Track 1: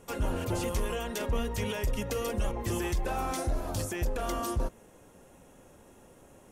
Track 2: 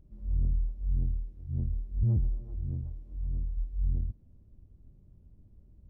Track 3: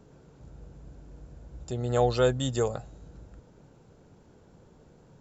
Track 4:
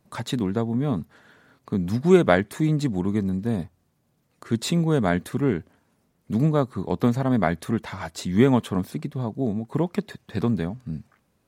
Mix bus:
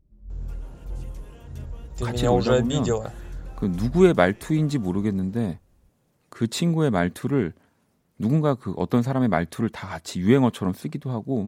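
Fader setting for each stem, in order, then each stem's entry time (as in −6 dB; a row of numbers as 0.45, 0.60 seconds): −18.0, −5.5, +2.5, 0.0 decibels; 0.40, 0.00, 0.30, 1.90 seconds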